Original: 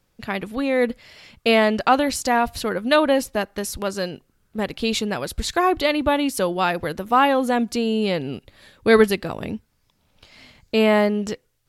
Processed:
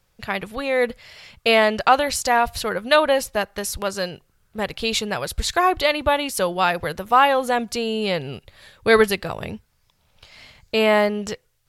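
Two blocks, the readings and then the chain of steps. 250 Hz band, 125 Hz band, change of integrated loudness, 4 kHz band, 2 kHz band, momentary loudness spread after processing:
-5.5 dB, -1.5 dB, +0.5 dB, +2.5 dB, +2.5 dB, 13 LU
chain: bell 270 Hz -11 dB 0.93 oct; gain +2.5 dB

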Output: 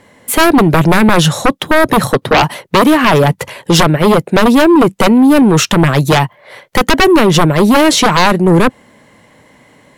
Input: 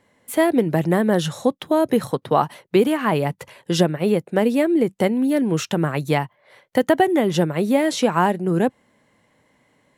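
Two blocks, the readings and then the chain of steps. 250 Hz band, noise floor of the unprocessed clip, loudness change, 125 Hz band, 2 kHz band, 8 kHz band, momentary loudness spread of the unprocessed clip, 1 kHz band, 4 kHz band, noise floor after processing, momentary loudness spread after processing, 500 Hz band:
+10.0 dB, -63 dBFS, +10.0 dB, +12.0 dB, +14.0 dB, +15.0 dB, 5 LU, +11.5 dB, +15.5 dB, -47 dBFS, 6 LU, +7.5 dB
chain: sine folder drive 12 dB, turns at -4 dBFS

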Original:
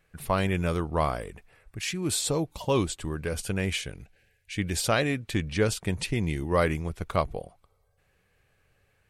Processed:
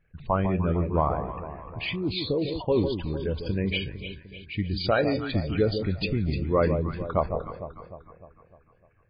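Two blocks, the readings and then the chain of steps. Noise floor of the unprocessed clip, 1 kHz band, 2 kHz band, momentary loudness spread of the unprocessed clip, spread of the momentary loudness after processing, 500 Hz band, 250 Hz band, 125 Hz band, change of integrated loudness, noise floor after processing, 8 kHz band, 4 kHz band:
-69 dBFS, +1.0 dB, -2.0 dB, 8 LU, 14 LU, +2.5 dB, +2.5 dB, +2.0 dB, +1.0 dB, -61 dBFS, under -40 dB, 0.0 dB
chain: formant sharpening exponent 2; echo with dull and thin repeats by turns 0.151 s, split 980 Hz, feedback 70%, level -7 dB; gain +1.5 dB; MP3 16 kbps 11025 Hz

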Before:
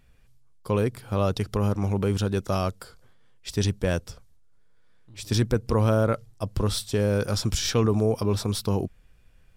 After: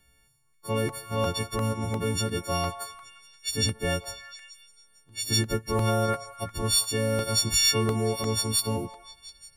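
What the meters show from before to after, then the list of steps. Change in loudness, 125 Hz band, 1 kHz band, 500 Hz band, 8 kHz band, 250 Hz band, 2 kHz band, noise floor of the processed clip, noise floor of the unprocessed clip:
-0.5 dB, -4.5 dB, +1.0 dB, -3.5 dB, +7.0 dB, -4.5 dB, +2.5 dB, -64 dBFS, -56 dBFS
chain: frequency quantiser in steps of 4 st; delay with a stepping band-pass 0.176 s, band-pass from 930 Hz, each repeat 0.7 oct, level -8.5 dB; crackling interface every 0.35 s, samples 64, repeat, from 0.54; gain -4 dB

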